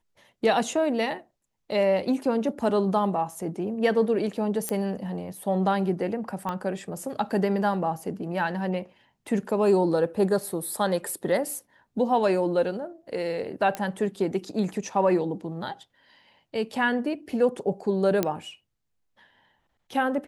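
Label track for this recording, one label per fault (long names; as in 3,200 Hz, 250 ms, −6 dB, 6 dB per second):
4.690000	4.690000	click −13 dBFS
6.490000	6.490000	click −18 dBFS
13.750000	13.750000	click −15 dBFS
18.230000	18.230000	click −9 dBFS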